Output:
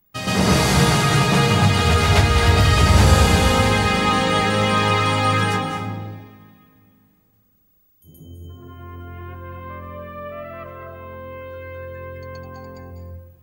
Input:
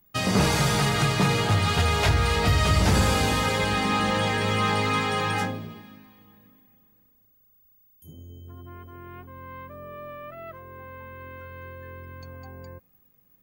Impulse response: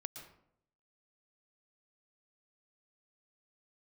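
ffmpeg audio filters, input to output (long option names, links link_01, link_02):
-filter_complex "[0:a]asplit=2[link_01][link_02];[1:a]atrim=start_sample=2205,asetrate=25137,aresample=44100,adelay=124[link_03];[link_02][link_03]afir=irnorm=-1:irlink=0,volume=6.5dB[link_04];[link_01][link_04]amix=inputs=2:normalize=0,volume=-1.5dB"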